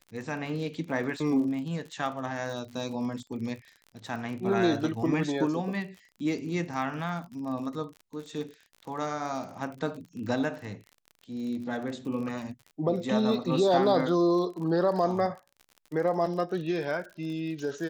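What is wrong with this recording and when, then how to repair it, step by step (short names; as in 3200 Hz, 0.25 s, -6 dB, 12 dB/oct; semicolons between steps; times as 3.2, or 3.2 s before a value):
crackle 46/s -38 dBFS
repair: de-click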